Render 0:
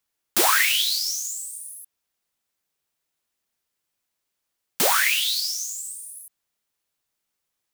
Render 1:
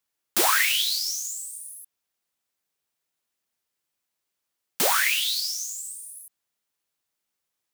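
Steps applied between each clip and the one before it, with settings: low shelf 67 Hz -7 dB; gain -2 dB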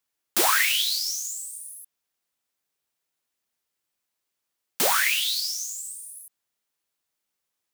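notches 50/100/150/200 Hz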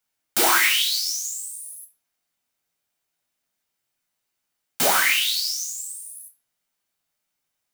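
reverb RT60 0.45 s, pre-delay 6 ms, DRR 0.5 dB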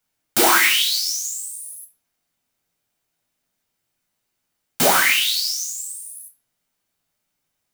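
low shelf 440 Hz +7 dB; gain +2.5 dB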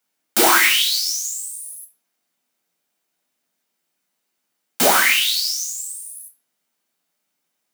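HPF 180 Hz 24 dB/oct; gain +1 dB

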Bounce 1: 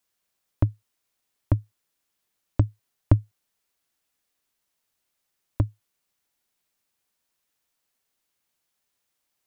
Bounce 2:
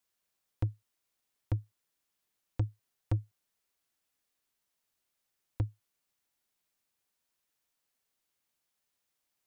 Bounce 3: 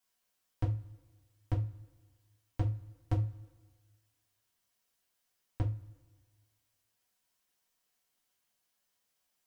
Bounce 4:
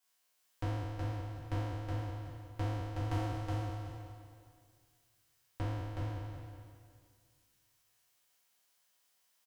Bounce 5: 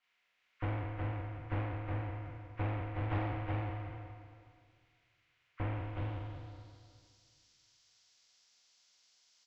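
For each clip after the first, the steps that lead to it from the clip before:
soft clip -19 dBFS, distortion -7 dB; gain -4.5 dB
two-slope reverb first 0.24 s, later 1.5 s, from -22 dB, DRR -3.5 dB; gain -2.5 dB
spectral trails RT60 2.08 s; low shelf 370 Hz -10 dB; feedback echo 0.37 s, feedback 18%, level -3 dB; gain +1 dB
nonlinear frequency compression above 1000 Hz 1.5:1; low-pass sweep 2300 Hz -> 5300 Hz, 5.62–7.13; Doppler distortion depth 0.35 ms

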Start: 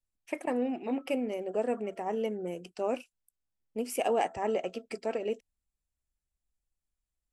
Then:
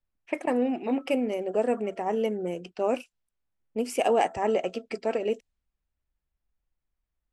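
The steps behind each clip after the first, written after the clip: low-pass opened by the level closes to 2400 Hz, open at -28.5 dBFS; gain +5 dB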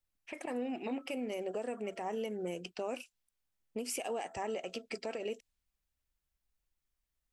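compressor 4:1, threshold -30 dBFS, peak gain reduction 10 dB; high shelf 2000 Hz +9.5 dB; limiter -23.5 dBFS, peak gain reduction 9 dB; gain -4.5 dB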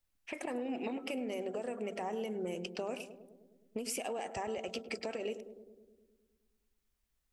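compressor, threshold -38 dBFS, peak gain reduction 6 dB; on a send: darkening echo 0.104 s, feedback 74%, low-pass 820 Hz, level -10 dB; on the sum: gain +3.5 dB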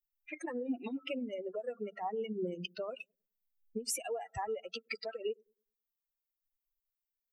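per-bin expansion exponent 3; gain +6.5 dB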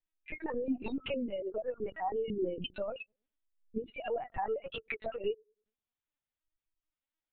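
LPC vocoder at 8 kHz pitch kept; gain +3 dB

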